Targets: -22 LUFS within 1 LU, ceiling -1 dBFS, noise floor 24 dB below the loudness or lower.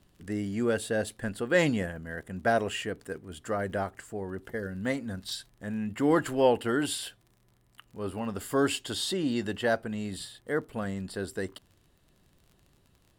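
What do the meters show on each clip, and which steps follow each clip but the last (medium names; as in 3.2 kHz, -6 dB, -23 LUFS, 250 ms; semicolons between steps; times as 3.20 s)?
tick rate 36 per s; loudness -30.5 LUFS; peak level -10.5 dBFS; loudness target -22.0 LUFS
-> de-click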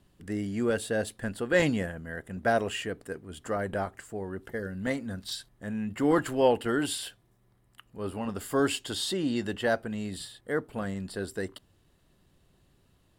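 tick rate 0.15 per s; loudness -31.0 LUFS; peak level -10.5 dBFS; loudness target -22.0 LUFS
-> trim +9 dB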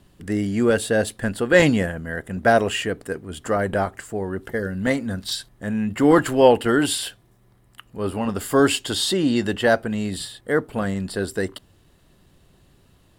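loudness -22.0 LUFS; peak level -1.5 dBFS; noise floor -57 dBFS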